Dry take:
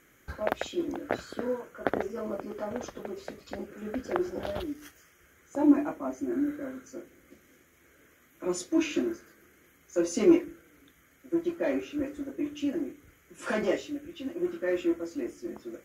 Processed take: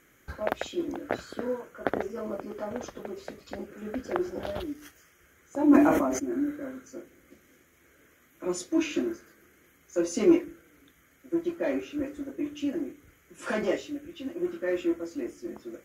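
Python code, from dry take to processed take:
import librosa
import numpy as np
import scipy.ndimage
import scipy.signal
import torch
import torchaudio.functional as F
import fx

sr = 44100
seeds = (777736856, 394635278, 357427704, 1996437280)

y = fx.sustainer(x, sr, db_per_s=32.0, at=(5.64, 6.18), fade=0.02)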